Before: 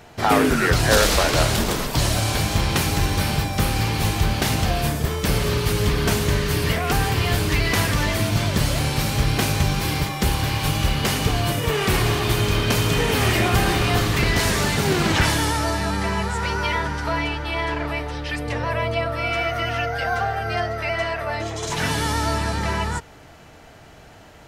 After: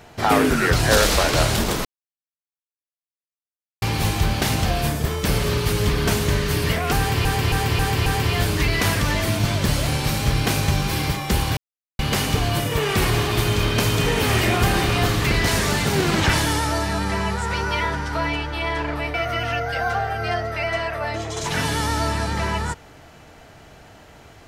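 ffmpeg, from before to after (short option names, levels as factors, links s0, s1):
-filter_complex "[0:a]asplit=10[s0][s1][s2][s3][s4][s5][s6][s7][s8][s9];[s0]atrim=end=1.85,asetpts=PTS-STARTPTS,afade=t=out:st=1.846:d=0.004:c=hsin[s10];[s1]atrim=start=1.85:end=3.82,asetpts=PTS-STARTPTS,volume=0[s11];[s2]atrim=start=3.82:end=7.252,asetpts=PTS-STARTPTS,afade=t=in:d=0.004:c=hsin[s12];[s3]atrim=start=6.978:end=7.252[s13];[s4]atrim=start=6.978:end=7.252[s14];[s5]atrim=start=6.978:end=7.252[s15];[s6]atrim=start=6.978:end=10.49,asetpts=PTS-STARTPTS,afade=t=out:st=3.508:d=0.004:c=hsin[s16];[s7]atrim=start=10.49:end=10.91,asetpts=PTS-STARTPTS,volume=0[s17];[s8]atrim=start=10.91:end=18.062,asetpts=PTS-STARTPTS,afade=t=in:d=0.004:c=hsin[s18];[s9]atrim=start=19.398[s19];[s10][s11][s12]concat=n=3:v=0:a=1[s20];[s20][s13]acrossfade=d=0.004:c1=hsin:c2=hsin[s21];[s21][s14]acrossfade=d=0.004:c1=hsin:c2=hsin[s22];[s22][s15]acrossfade=d=0.004:c1=hsin:c2=hsin[s23];[s16][s17][s18]concat=n=3:v=0:a=1[s24];[s23][s24]acrossfade=d=0.004:c1=hsin:c2=hsin[s25];[s25][s19]acrossfade=d=0.004:c1=hsin:c2=hsin"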